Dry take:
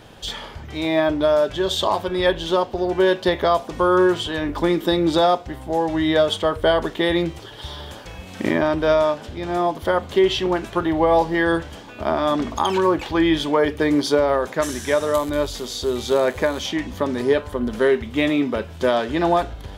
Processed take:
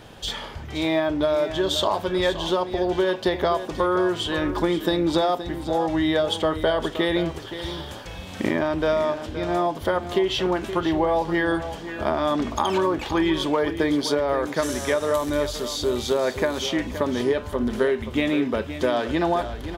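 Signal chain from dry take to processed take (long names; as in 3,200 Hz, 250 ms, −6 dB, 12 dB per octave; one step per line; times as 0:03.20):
downward compressor, threshold −18 dBFS, peak gain reduction 6.5 dB
on a send: single-tap delay 522 ms −11.5 dB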